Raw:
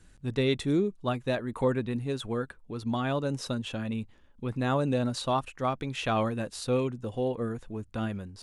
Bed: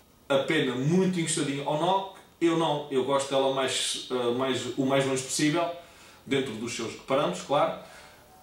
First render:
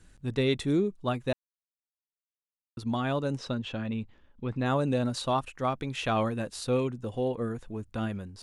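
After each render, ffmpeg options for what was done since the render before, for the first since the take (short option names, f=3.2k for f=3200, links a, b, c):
-filter_complex "[0:a]asettb=1/sr,asplit=3[a][b][c];[a]atrim=end=3.374[d];[b]atrim=start=3.37:end=4.66,asetpts=PTS-STARTPTS,afade=t=in:d=0.004:c=qsin,afade=t=out:st=1.286:d=0.004:c=qsin,lowpass=4.6k[e];[c]atrim=start=4.656[f];[d][e]acrossfade=d=0.004:c1=hsin:c2=qsin[g];[g][f]acrossfade=d=0.004:c1=qsin:c2=hsin,asplit=3[h][i][j];[h]atrim=end=1.33,asetpts=PTS-STARTPTS,afade=t=out:st=1.326:d=0.004:c=hsin[k];[i]atrim=start=1.33:end=2.77,asetpts=PTS-STARTPTS,volume=0[l];[j]atrim=start=2.77,asetpts=PTS-STARTPTS,afade=t=in:d=0.004:c=hsin[m];[k][l][m]concat=n=3:v=0:a=1"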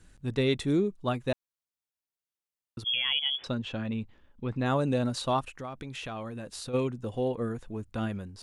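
-filter_complex "[0:a]asettb=1/sr,asplit=3[a][b][c];[a]atrim=end=2.844[d];[b]atrim=start=2.84:end=3.44,asetpts=PTS-STARTPTS,afade=t=in:d=0.004:c=qsin,afade=t=out:st=0.596:d=0.004:c=qsin,lowpass=f=3k:t=q:w=0.5098,lowpass=f=3k:t=q:w=0.6013,lowpass=f=3k:t=q:w=0.9,lowpass=f=3k:t=q:w=2.563,afreqshift=-3500[e];[c]atrim=start=3.436[f];[d][e]acrossfade=d=0.004:c1=hsin:c2=qsin[g];[g][f]acrossfade=d=0.004:c1=qsin:c2=hsin,asplit=3[h][i][j];[h]afade=t=out:st=5.53:d=0.02[k];[i]acompressor=threshold=-36dB:ratio=4:attack=3.2:release=140:knee=1:detection=peak,afade=t=in:st=5.53:d=0.02,afade=t=out:st=6.73:d=0.02[l];[j]afade=t=in:st=6.73:d=0.02[m];[k][l][m]amix=inputs=3:normalize=0"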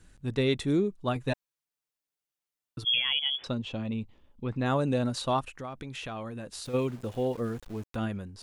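-filter_complex "[0:a]asettb=1/sr,asplit=3[a][b][c];[a]atrim=end=1.154[d];[b]atrim=start=1.15:end=3,asetpts=PTS-STARTPTS,afade=t=in:d=0.004:c=qsin,afade=t=out:st=1.846:d=0.004:c=qsin,aecho=1:1:6.8:0.65,atrim=end_sample=81585[e];[c]atrim=start=2.996[f];[d][e]acrossfade=d=0.004:c1=hsin:c2=qsin[g];[g][f]acrossfade=d=0.004:c1=qsin:c2=hsin,asettb=1/sr,asplit=3[h][i][j];[h]atrim=end=3.534[k];[i]atrim=start=3.53:end=4.45,asetpts=PTS-STARTPTS,afade=t=in:d=0.004:c=qsin,afade=t=out:st=0.916:d=0.004:c=qsin,equalizer=f=1.6k:w=3.2:g=-11[l];[j]atrim=start=4.446[m];[k][l]acrossfade=d=0.004:c1=hsin:c2=qsin[n];[n][m]acrossfade=d=0.004:c1=qsin:c2=hsin,asettb=1/sr,asplit=3[o][p][q];[o]atrim=end=6.654[r];[p]atrim=start=6.65:end=7.96,asetpts=PTS-STARTPTS,afade=t=in:d=0.004:c=qsin,afade=t=out:st=1.306:d=0.004:c=qsin,aeval=exprs='val(0)*gte(abs(val(0)),0.00501)':c=same[s];[q]atrim=start=7.956[t];[r][s]acrossfade=d=0.004:c1=hsin:c2=qsin[u];[u][t]acrossfade=d=0.004:c1=qsin:c2=hsin"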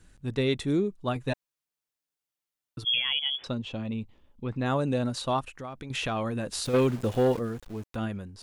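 -filter_complex "[0:a]asettb=1/sr,asplit=3[a][b][c];[a]atrim=end=5.904[d];[b]atrim=start=5.9:end=7.39,asetpts=PTS-STARTPTS,afade=t=in:d=0.004:c=qsin,afade=t=out:st=1.486:d=0.004:c=qsin,aeval=exprs='0.141*sin(PI/2*1.58*val(0)/0.141)':c=same[e];[c]atrim=start=7.386[f];[d][e]acrossfade=d=0.004:c1=hsin:c2=qsin[g];[g][f]acrossfade=d=0.004:c1=qsin:c2=hsin"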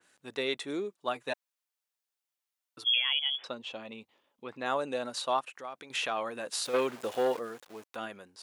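-af "highpass=530,adynamicequalizer=threshold=0.00794:dfrequency=3400:dqfactor=0.7:tfrequency=3400:tqfactor=0.7:attack=5:release=100:ratio=0.375:range=3:mode=cutabove:tftype=highshelf"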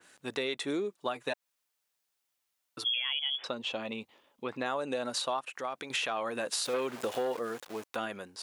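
-filter_complex "[0:a]asplit=2[a][b];[b]alimiter=level_in=2dB:limit=-24dB:level=0:latency=1:release=109,volume=-2dB,volume=2dB[c];[a][c]amix=inputs=2:normalize=0,acompressor=threshold=-31dB:ratio=3"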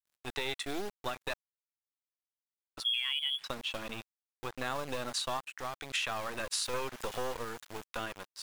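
-filter_complex "[0:a]acrossover=split=860|2500[a][b][c];[a]acrusher=bits=4:dc=4:mix=0:aa=0.000001[d];[d][b][c]amix=inputs=3:normalize=0,aeval=exprs='sgn(val(0))*max(abs(val(0))-0.00224,0)':c=same"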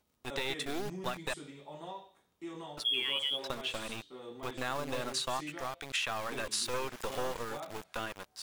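-filter_complex "[1:a]volume=-19.5dB[a];[0:a][a]amix=inputs=2:normalize=0"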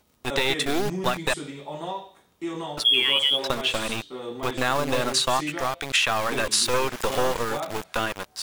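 -af "volume=12dB"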